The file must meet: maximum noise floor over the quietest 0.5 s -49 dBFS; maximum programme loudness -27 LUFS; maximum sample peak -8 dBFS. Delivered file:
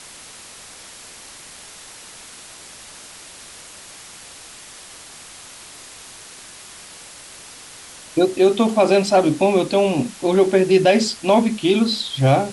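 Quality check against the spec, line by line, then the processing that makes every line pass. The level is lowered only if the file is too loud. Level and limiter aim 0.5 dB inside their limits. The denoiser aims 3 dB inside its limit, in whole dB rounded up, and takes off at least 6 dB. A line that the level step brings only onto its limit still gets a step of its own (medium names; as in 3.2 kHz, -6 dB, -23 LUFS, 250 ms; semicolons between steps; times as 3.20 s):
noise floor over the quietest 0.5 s -40 dBFS: fail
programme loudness -17.0 LUFS: fail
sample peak -4.5 dBFS: fail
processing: trim -10.5 dB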